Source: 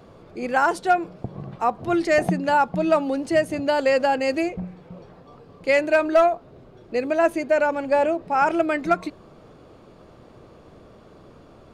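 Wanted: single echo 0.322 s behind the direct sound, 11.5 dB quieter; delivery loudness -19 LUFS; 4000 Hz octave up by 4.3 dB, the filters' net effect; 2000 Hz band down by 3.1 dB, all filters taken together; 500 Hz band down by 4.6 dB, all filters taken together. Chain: bell 500 Hz -6 dB; bell 2000 Hz -5.5 dB; bell 4000 Hz +7.5 dB; echo 0.322 s -11.5 dB; gain +6 dB

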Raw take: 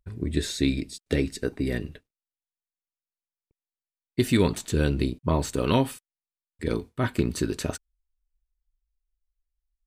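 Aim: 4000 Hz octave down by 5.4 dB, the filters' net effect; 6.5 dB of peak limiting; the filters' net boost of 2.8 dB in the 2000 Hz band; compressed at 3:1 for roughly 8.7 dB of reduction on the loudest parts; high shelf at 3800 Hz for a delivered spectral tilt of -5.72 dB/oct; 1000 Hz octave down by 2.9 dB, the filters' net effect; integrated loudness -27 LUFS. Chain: bell 1000 Hz -4.5 dB; bell 2000 Hz +7.5 dB; high shelf 3800 Hz -4.5 dB; bell 4000 Hz -6 dB; compressor 3:1, threshold -29 dBFS; gain +9 dB; limiter -13.5 dBFS

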